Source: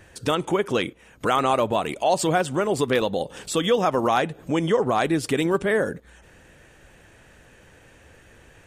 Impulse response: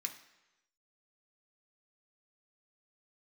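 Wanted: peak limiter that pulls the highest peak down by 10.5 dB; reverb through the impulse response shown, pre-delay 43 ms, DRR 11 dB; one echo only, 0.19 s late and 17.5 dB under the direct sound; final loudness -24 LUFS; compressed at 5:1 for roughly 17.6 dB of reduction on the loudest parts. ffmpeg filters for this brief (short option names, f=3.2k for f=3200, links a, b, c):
-filter_complex "[0:a]acompressor=threshold=-37dB:ratio=5,alimiter=level_in=9.5dB:limit=-24dB:level=0:latency=1,volume=-9.5dB,aecho=1:1:190:0.133,asplit=2[a][b];[1:a]atrim=start_sample=2205,adelay=43[c];[b][c]afir=irnorm=-1:irlink=0,volume=-10dB[d];[a][d]amix=inputs=2:normalize=0,volume=20dB"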